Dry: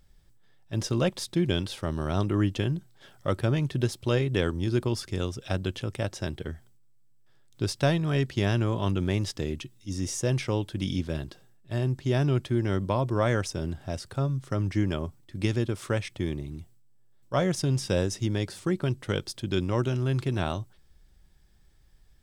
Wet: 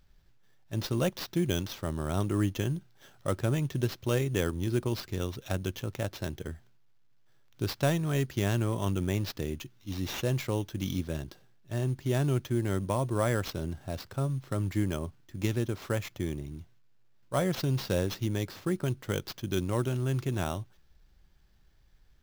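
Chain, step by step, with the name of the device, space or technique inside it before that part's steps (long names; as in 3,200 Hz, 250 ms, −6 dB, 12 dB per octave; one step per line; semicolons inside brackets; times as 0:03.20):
early companding sampler (sample-rate reduction 9,400 Hz, jitter 0%; log-companded quantiser 8 bits)
level −3 dB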